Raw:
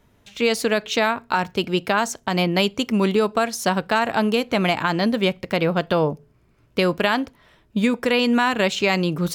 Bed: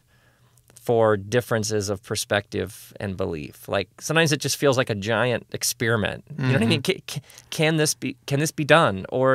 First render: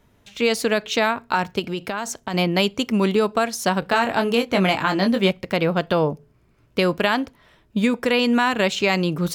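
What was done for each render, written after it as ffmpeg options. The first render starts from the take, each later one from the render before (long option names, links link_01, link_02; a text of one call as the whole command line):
ffmpeg -i in.wav -filter_complex "[0:a]asettb=1/sr,asplit=3[link_01][link_02][link_03];[link_01]atrim=end=1.594[link_04];[link_02]atrim=start=1.59:end=2.34,asetpts=PTS-STARTPTS,afade=type=in:duration=0.004:curve=qsin,afade=type=out:start_time=0.746:duration=0.004:curve=qsin,acompressor=threshold=-22dB:ratio=6:attack=3.2:release=140:knee=1:detection=peak[link_05];[link_03]atrim=start=2.336[link_06];[link_04][link_05]acrossfade=duration=0.004:curve1=hsin:curve2=qsin[link_07];[link_07][link_06]acrossfade=duration=0.004:curve1=qsin:curve2=hsin,asettb=1/sr,asplit=3[link_08][link_09][link_10];[link_08]atrim=end=3.804[link_11];[link_09]atrim=start=3.8:end=5.31,asetpts=PTS-STARTPTS,afade=type=in:duration=0.004:curve=qsin,afade=type=out:start_time=1.506:duration=0.004:curve=qsin,asplit=2[link_12][link_13];[link_13]adelay=21,volume=-6dB[link_14];[link_12][link_14]amix=inputs=2:normalize=0,atrim=end_sample=66591[link_15];[link_10]atrim=start=5.306[link_16];[link_11][link_15]acrossfade=duration=0.004:curve1=hsin:curve2=qsin[link_17];[link_17][link_16]acrossfade=duration=0.004:curve1=qsin:curve2=hsin" out.wav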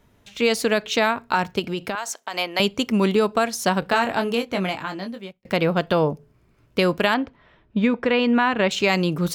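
ffmpeg -i in.wav -filter_complex "[0:a]asettb=1/sr,asplit=3[link_01][link_02][link_03];[link_01]atrim=end=1.954[link_04];[link_02]atrim=start=1.95:end=2.6,asetpts=PTS-STARTPTS,afade=type=in:duration=0.004:curve=qsin,afade=type=out:start_time=0.646:duration=0.004:curve=qsin,highpass=640[link_05];[link_03]atrim=start=2.596[link_06];[link_04][link_05]acrossfade=duration=0.004:curve1=hsin:curve2=qsin[link_07];[link_07][link_06]acrossfade=duration=0.004:curve1=qsin:curve2=hsin,asettb=1/sr,asplit=3[link_08][link_09][link_10];[link_08]atrim=end=7.144[link_11];[link_09]atrim=start=7.14:end=8.71,asetpts=PTS-STARTPTS,afade=type=in:duration=0.004:curve=qsin,afade=type=out:start_time=1.566:duration=0.004:curve=qsin,lowpass=2900[link_12];[link_10]atrim=start=8.706[link_13];[link_11][link_12]acrossfade=duration=0.004:curve1=hsin:curve2=qsin[link_14];[link_14][link_13]acrossfade=duration=0.004:curve1=qsin:curve2=hsin,asplit=2[link_15][link_16];[link_15]atrim=end=5.45,asetpts=PTS-STARTPTS,afade=type=out:start_time=3.84:duration=1.61[link_17];[link_16]atrim=start=5.45,asetpts=PTS-STARTPTS,afade=type=in:duration=0.004:curve=hsin[link_18];[link_17][link_18]concat=n=2:v=0:a=1" out.wav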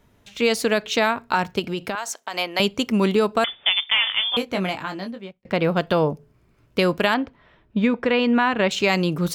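ffmpeg -i in.wav -filter_complex "[0:a]asettb=1/sr,asplit=3[link_01][link_02][link_03];[link_01]atrim=end=3.444[link_04];[link_02]atrim=start=3.44:end=4.37,asetpts=PTS-STARTPTS,afade=type=in:duration=0.004:curve=qsin,afade=type=out:start_time=0.926:duration=0.004:curve=qsin,lowpass=frequency=3100:width_type=q:width=0.5098,lowpass=frequency=3100:width_type=q:width=0.6013,lowpass=frequency=3100:width_type=q:width=0.9,lowpass=frequency=3100:width_type=q:width=2.563,afreqshift=-3700[link_05];[link_03]atrim=start=4.366[link_06];[link_04][link_05]acrossfade=duration=0.004:curve1=hsin:curve2=qsin[link_07];[link_07][link_06]acrossfade=duration=0.004:curve1=qsin:curve2=hsin,asplit=3[link_08][link_09][link_10];[link_08]afade=type=out:start_time=5.1:duration=0.02[link_11];[link_09]aemphasis=mode=reproduction:type=50kf,afade=type=in:start_time=5.1:duration=0.02,afade=type=out:start_time=5.63:duration=0.02[link_12];[link_10]afade=type=in:start_time=5.63:duration=0.02[link_13];[link_11][link_12][link_13]amix=inputs=3:normalize=0" out.wav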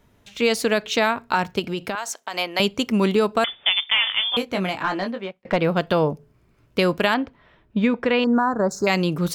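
ffmpeg -i in.wav -filter_complex "[0:a]asplit=3[link_01][link_02][link_03];[link_01]afade=type=out:start_time=4.8:duration=0.02[link_04];[link_02]asplit=2[link_05][link_06];[link_06]highpass=frequency=720:poles=1,volume=18dB,asoftclip=type=tanh:threshold=-9dB[link_07];[link_05][link_07]amix=inputs=2:normalize=0,lowpass=frequency=1700:poles=1,volume=-6dB,afade=type=in:start_time=4.8:duration=0.02,afade=type=out:start_time=5.55:duration=0.02[link_08];[link_03]afade=type=in:start_time=5.55:duration=0.02[link_09];[link_04][link_08][link_09]amix=inputs=3:normalize=0,asettb=1/sr,asplit=3[link_10][link_11][link_12];[link_10]atrim=end=8.244[link_13];[link_11]atrim=start=8.24:end=8.87,asetpts=PTS-STARTPTS,afade=type=in:duration=0.004:curve=qsin,afade=type=out:start_time=0.626:duration=0.004:curve=qsin,asuperstop=centerf=2800:order=8:qfactor=0.76[link_14];[link_12]atrim=start=8.866[link_15];[link_13][link_14]acrossfade=duration=0.004:curve1=hsin:curve2=qsin[link_16];[link_16][link_15]acrossfade=duration=0.004:curve1=qsin:curve2=hsin" out.wav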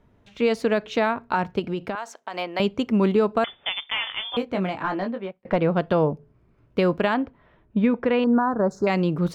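ffmpeg -i in.wav -af "lowpass=frequency=1200:poles=1" out.wav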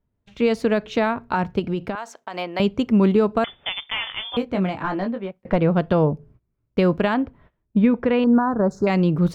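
ffmpeg -i in.wav -af "agate=range=-21dB:threshold=-52dB:ratio=16:detection=peak,lowshelf=frequency=190:gain=9" out.wav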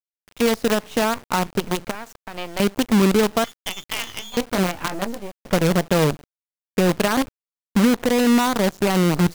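ffmpeg -i in.wav -af "acrusher=bits=4:dc=4:mix=0:aa=0.000001" out.wav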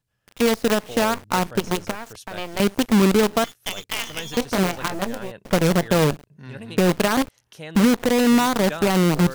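ffmpeg -i in.wav -i bed.wav -filter_complex "[1:a]volume=-16.5dB[link_01];[0:a][link_01]amix=inputs=2:normalize=0" out.wav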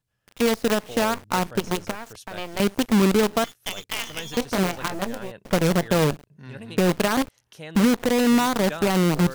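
ffmpeg -i in.wav -af "volume=-2dB" out.wav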